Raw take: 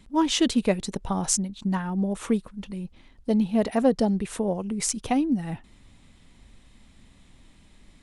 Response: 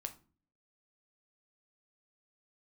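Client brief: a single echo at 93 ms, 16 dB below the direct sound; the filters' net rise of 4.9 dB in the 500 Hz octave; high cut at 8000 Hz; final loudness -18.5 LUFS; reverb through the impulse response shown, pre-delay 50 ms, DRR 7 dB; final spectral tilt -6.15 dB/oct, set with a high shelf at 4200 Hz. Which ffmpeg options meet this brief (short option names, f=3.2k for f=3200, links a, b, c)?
-filter_complex "[0:a]lowpass=8k,equalizer=f=500:t=o:g=6,highshelf=f=4.2k:g=-7.5,aecho=1:1:93:0.158,asplit=2[a][b];[1:a]atrim=start_sample=2205,adelay=50[c];[b][c]afir=irnorm=-1:irlink=0,volume=-4.5dB[d];[a][d]amix=inputs=2:normalize=0,volume=4.5dB"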